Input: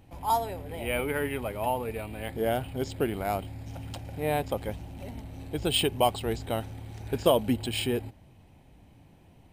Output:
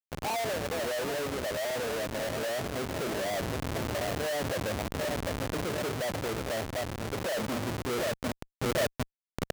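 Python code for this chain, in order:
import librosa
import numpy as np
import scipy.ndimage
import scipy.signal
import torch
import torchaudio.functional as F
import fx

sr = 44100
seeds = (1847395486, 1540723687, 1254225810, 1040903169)

y = fx.rattle_buzz(x, sr, strikes_db=-35.0, level_db=-18.0)
y = np.clip(y, -10.0 ** (-23.5 / 20.0), 10.0 ** (-23.5 / 20.0))
y = fx.lowpass_res(y, sr, hz=620.0, q=4.9)
y = fx.hum_notches(y, sr, base_hz=50, count=9)
y = fx.echo_feedback(y, sr, ms=744, feedback_pct=55, wet_db=-11.5)
y = fx.schmitt(y, sr, flips_db=-34.0)
y = fx.rider(y, sr, range_db=10, speed_s=2.0)
y = fx.highpass(y, sr, hz=180.0, slope=6)
y = fx.env_flatten(y, sr, amount_pct=50, at=(3.32, 5.63))
y = y * librosa.db_to_amplitude(-4.5)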